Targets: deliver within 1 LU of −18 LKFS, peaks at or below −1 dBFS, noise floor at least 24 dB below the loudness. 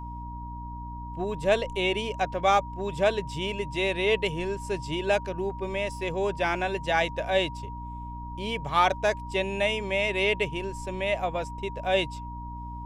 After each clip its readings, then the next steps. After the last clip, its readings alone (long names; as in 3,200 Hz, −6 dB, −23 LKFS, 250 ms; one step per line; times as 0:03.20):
mains hum 60 Hz; hum harmonics up to 300 Hz; level of the hum −36 dBFS; interfering tone 950 Hz; level of the tone −39 dBFS; integrated loudness −27.5 LKFS; sample peak −9.0 dBFS; target loudness −18.0 LKFS
→ mains-hum notches 60/120/180/240/300 Hz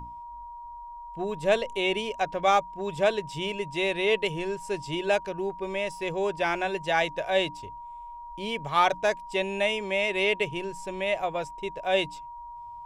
mains hum none found; interfering tone 950 Hz; level of the tone −39 dBFS
→ notch filter 950 Hz, Q 30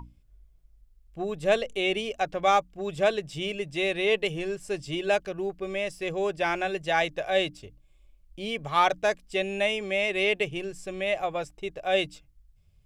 interfering tone none found; integrated loudness −28.0 LKFS; sample peak −10.0 dBFS; target loudness −18.0 LKFS
→ level +10 dB
brickwall limiter −1 dBFS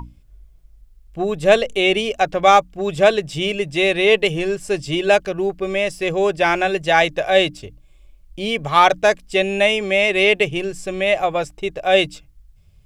integrated loudness −18.0 LKFS; sample peak −1.0 dBFS; background noise floor −50 dBFS